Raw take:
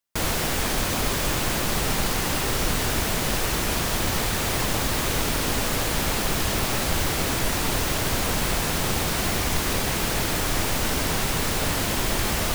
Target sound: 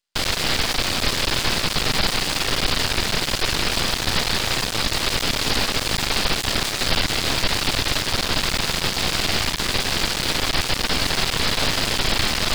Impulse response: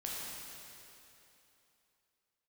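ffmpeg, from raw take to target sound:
-af "aresample=11025,aresample=44100,aeval=exprs='max(val(0),0)':c=same,crystalizer=i=4:c=0,volume=4dB"

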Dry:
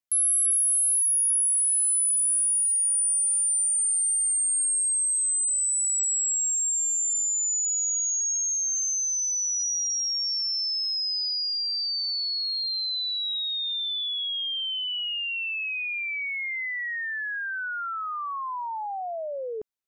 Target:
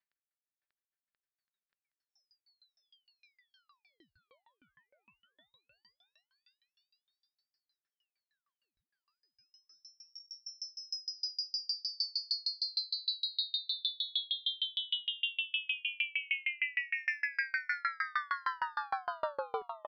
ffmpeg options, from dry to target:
-filter_complex "[0:a]equalizer=f=1.7k:w=2.1:g=14,aecho=1:1:5.1:0.61,acompressor=threshold=-25dB:ratio=6,asoftclip=type=tanh:threshold=-27dB,asplit=2[a][b];[b]aecho=0:1:590|1032|1364|1613|1800:0.631|0.398|0.251|0.158|0.1[c];[a][c]amix=inputs=2:normalize=0,aresample=11025,aresample=44100,aeval=exprs='val(0)*pow(10,-34*if(lt(mod(6.5*n/s,1),2*abs(6.5)/1000),1-mod(6.5*n/s,1)/(2*abs(6.5)/1000),(mod(6.5*n/s,1)-2*abs(6.5)/1000)/(1-2*abs(6.5)/1000))/20)':c=same,volume=1dB"

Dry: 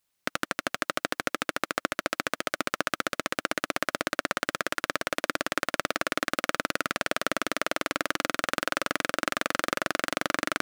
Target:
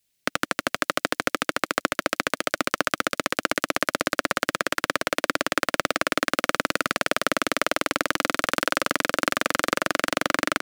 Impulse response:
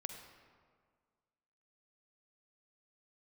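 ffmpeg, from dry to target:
-filter_complex "[0:a]acrossover=split=260|1600|5400[a][b][c][d];[b]adynamicsmooth=sensitivity=5.5:basefreq=640[e];[d]aecho=1:1:173:0.0841[f];[a][e][c][f]amix=inputs=4:normalize=0,volume=5dB"

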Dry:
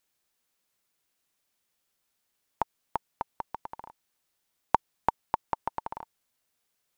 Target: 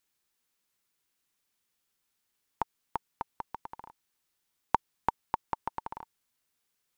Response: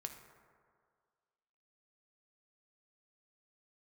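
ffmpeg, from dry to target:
-af "equalizer=f=630:t=o:w=0.5:g=-6,volume=-1.5dB"

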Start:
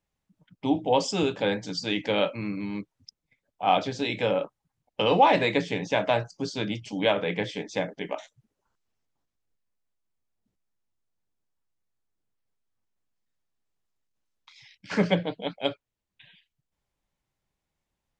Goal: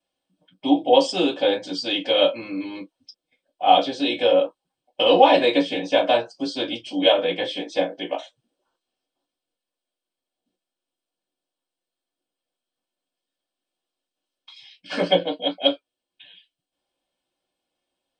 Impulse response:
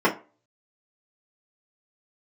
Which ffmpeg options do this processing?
-filter_complex "[0:a]aexciter=amount=6.8:drive=6.6:freq=2.8k,highshelf=f=2.3k:g=-10.5[a];[1:a]atrim=start_sample=2205,afade=t=out:st=0.13:d=0.01,atrim=end_sample=6174,asetrate=70560,aresample=44100[b];[a][b]afir=irnorm=-1:irlink=0,volume=-11dB"

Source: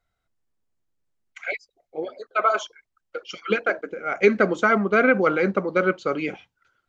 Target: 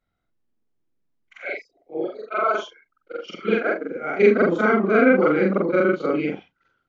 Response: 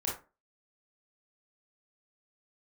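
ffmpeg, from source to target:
-filter_complex "[0:a]afftfilt=real='re':imag='-im':win_size=4096:overlap=0.75,lowpass=4.5k,equalizer=f=260:t=o:w=1.5:g=9.5,acrossover=split=310|3000[a][b][c];[a]acompressor=threshold=-26dB:ratio=6[d];[d][b][c]amix=inputs=3:normalize=0,volume=3dB"

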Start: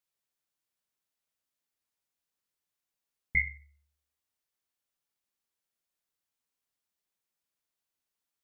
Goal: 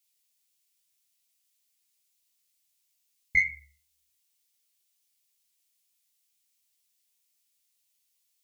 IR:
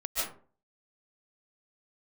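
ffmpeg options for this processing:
-af "aexciter=amount=3.4:drive=7.7:freq=2.1k,flanger=delay=16:depth=4.1:speed=2.2"

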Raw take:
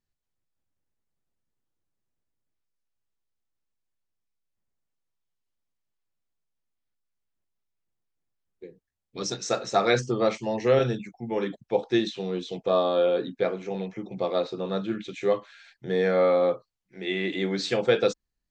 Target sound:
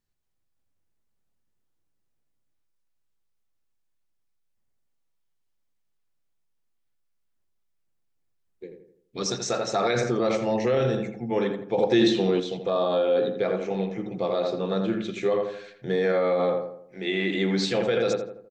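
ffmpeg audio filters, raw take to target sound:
-filter_complex "[0:a]asplit=2[a][b];[b]adelay=83,lowpass=f=1.8k:p=1,volume=-6dB,asplit=2[c][d];[d]adelay=83,lowpass=f=1.8k:p=1,volume=0.46,asplit=2[e][f];[f]adelay=83,lowpass=f=1.8k:p=1,volume=0.46,asplit=2[g][h];[h]adelay=83,lowpass=f=1.8k:p=1,volume=0.46,asplit=2[i][j];[j]adelay=83,lowpass=f=1.8k:p=1,volume=0.46,asplit=2[k][l];[l]adelay=83,lowpass=f=1.8k:p=1,volume=0.46[m];[a][c][e][g][i][k][m]amix=inputs=7:normalize=0,alimiter=limit=-18dB:level=0:latency=1:release=26,asettb=1/sr,asplit=3[n][o][p];[n]atrim=end=11.784[q];[o]atrim=start=11.78:end=12.4,asetpts=PTS-STARTPTS,afade=t=in:d=0.004:c=qsin,afade=t=out:st=0.616:d=0.004:c=qsin,acontrast=22[r];[p]atrim=start=12.396[s];[q][r]acrossfade=d=0.004:c1=hsin:c2=qsin[t];[t][s]acrossfade=d=0.004:c1=qsin:c2=hsin,volume=2.5dB"

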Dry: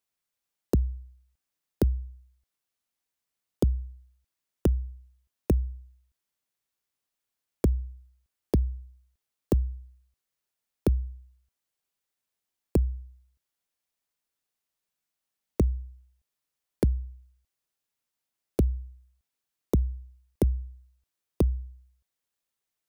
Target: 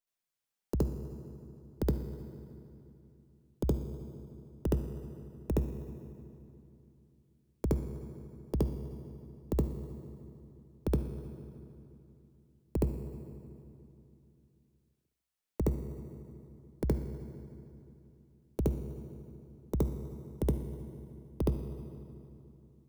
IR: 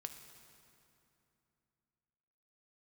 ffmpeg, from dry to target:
-filter_complex "[0:a]aeval=exprs='if(lt(val(0),0),0.708*val(0),val(0))':c=same,asplit=2[a][b];[b]highpass=99[c];[1:a]atrim=start_sample=2205,adelay=69[d];[c][d]afir=irnorm=-1:irlink=0,volume=9dB[e];[a][e]amix=inputs=2:normalize=0,volume=-8.5dB"

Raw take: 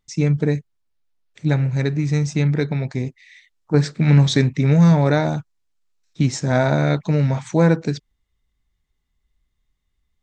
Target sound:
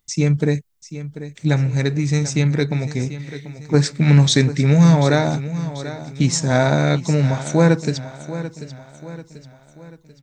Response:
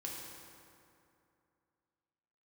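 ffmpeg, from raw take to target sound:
-af "aemphasis=mode=production:type=50kf,aecho=1:1:739|1478|2217|2956:0.211|0.0951|0.0428|0.0193,volume=1dB"

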